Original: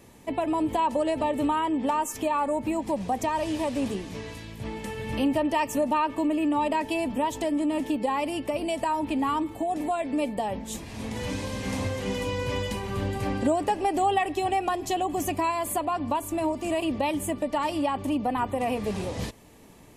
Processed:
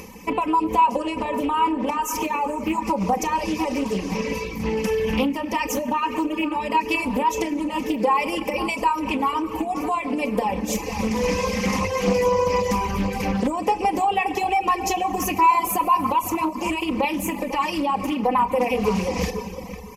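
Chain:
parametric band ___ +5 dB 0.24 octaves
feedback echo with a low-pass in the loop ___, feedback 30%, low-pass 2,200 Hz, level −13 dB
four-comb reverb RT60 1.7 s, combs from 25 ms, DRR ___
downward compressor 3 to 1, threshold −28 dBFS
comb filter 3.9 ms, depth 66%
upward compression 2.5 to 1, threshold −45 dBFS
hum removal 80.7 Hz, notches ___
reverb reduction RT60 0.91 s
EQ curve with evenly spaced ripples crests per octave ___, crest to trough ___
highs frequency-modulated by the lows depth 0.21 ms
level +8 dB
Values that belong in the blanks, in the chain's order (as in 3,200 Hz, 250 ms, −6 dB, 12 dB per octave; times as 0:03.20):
140 Hz, 498 ms, 4.5 dB, 2, 0.8, 12 dB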